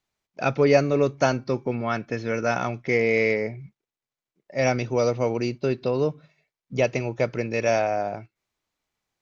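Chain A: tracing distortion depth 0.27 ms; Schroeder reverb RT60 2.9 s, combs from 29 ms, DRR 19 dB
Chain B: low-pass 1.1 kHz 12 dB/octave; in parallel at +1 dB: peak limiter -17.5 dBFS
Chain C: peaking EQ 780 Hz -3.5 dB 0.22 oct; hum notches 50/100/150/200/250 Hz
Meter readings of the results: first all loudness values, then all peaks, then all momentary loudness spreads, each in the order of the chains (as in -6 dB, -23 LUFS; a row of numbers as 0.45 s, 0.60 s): -24.5 LUFS, -20.5 LUFS, -24.5 LUFS; -6.0 dBFS, -4.5 dBFS, -6.0 dBFS; 11 LU, 9 LU, 9 LU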